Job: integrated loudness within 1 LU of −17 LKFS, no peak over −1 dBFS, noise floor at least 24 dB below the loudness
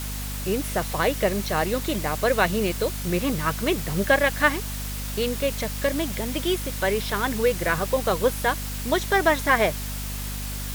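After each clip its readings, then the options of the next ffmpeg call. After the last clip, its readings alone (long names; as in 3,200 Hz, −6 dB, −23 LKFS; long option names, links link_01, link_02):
mains hum 50 Hz; hum harmonics up to 250 Hz; level of the hum −30 dBFS; background noise floor −31 dBFS; target noise floor −49 dBFS; integrated loudness −24.5 LKFS; sample peak −4.0 dBFS; target loudness −17.0 LKFS
→ -af "bandreject=frequency=50:width_type=h:width=4,bandreject=frequency=100:width_type=h:width=4,bandreject=frequency=150:width_type=h:width=4,bandreject=frequency=200:width_type=h:width=4,bandreject=frequency=250:width_type=h:width=4"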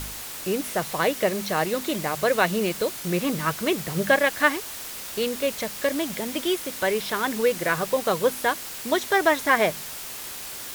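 mains hum none found; background noise floor −36 dBFS; target noise floor −49 dBFS
→ -af "afftdn=noise_reduction=13:noise_floor=-36"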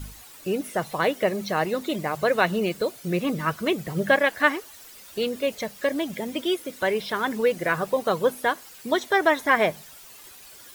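background noise floor −47 dBFS; target noise floor −49 dBFS
→ -af "afftdn=noise_reduction=6:noise_floor=-47"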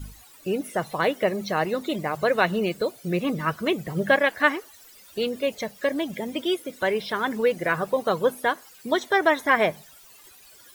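background noise floor −51 dBFS; integrated loudness −25.0 LKFS; sample peak −4.5 dBFS; target loudness −17.0 LKFS
→ -af "volume=8dB,alimiter=limit=-1dB:level=0:latency=1"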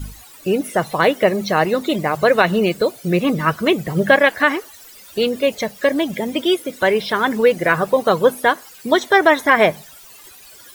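integrated loudness −17.5 LKFS; sample peak −1.0 dBFS; background noise floor −43 dBFS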